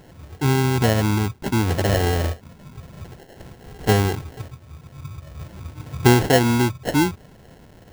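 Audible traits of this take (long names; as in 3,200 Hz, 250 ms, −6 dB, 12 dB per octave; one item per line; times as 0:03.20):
aliases and images of a low sample rate 1,200 Hz, jitter 0%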